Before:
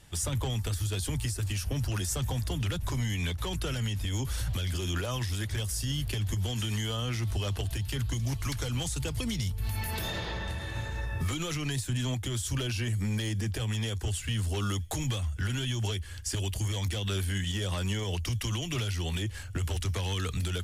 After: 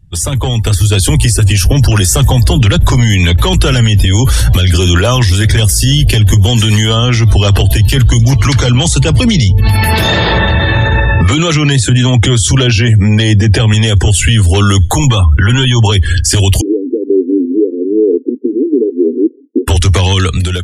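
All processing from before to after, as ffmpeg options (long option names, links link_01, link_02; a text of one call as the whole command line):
ffmpeg -i in.wav -filter_complex "[0:a]asettb=1/sr,asplit=3[link_01][link_02][link_03];[link_01]atrim=end=8.314[link_04];[link_02]atrim=start=8.31:end=13.74,asetpts=PTS-STARTPTS,afade=type=in:duration=0.004:curve=qsin,afade=type=out:start_time=5.426:duration=0.004:curve=qsin,highpass=68,highshelf=frequency=10000:gain=-11[link_05];[link_03]atrim=start=13.736[link_06];[link_04][link_05]acrossfade=duration=0.004:curve1=hsin:curve2=qsin[link_07];[link_07][link_06]acrossfade=duration=0.004:curve1=qsin:curve2=hsin,asettb=1/sr,asplit=3[link_08][link_09][link_10];[link_08]atrim=end=14.884[link_11];[link_09]atrim=start=14.88:end=15.92,asetpts=PTS-STARTPTS,afade=type=in:duration=0.004:curve=qsin,afade=type=out:start_time=1.036:duration=0.004:curve=qsin,equalizer=frequency=980:width=1.9:gain=7.5,bandreject=frequency=660:width=20,acompressor=threshold=-33dB:ratio=10:attack=3.2:release=140:knee=1:detection=peak[link_12];[link_10]atrim=start=15.916[link_13];[link_11][link_12]acrossfade=duration=0.004:curve1=hsin:curve2=qsin[link_14];[link_14][link_13]acrossfade=duration=0.004:curve1=qsin:curve2=hsin,asettb=1/sr,asplit=3[link_15][link_16][link_17];[link_15]atrim=end=16.614[link_18];[link_16]atrim=start=16.61:end=19.68,asetpts=PTS-STARTPTS,afade=type=in:duration=0.004:curve=qsin,afade=type=out:start_time=3.066:duration=0.004:curve=qsin,asuperpass=centerf=340:order=12:qfactor=1.6,aphaser=in_gain=1:out_gain=1:delay=1.4:decay=0.25:speed=1.3:type=triangular[link_19];[link_17]atrim=start=19.676[link_20];[link_18][link_19]acrossfade=duration=0.004:curve1=hsin:curve2=qsin[link_21];[link_21][link_20]acrossfade=duration=0.004:curve1=qsin:curve2=hsin,afftdn=noise_reduction=31:noise_floor=-49,dynaudnorm=framelen=210:gausssize=11:maxgain=16.5dB,alimiter=level_in=17dB:limit=-1dB:release=50:level=0:latency=1,volume=-1dB" out.wav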